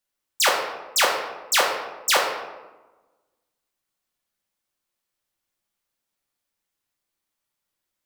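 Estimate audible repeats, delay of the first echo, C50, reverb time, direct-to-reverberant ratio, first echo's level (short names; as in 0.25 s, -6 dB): none, none, 4.0 dB, 1.2 s, -1.0 dB, none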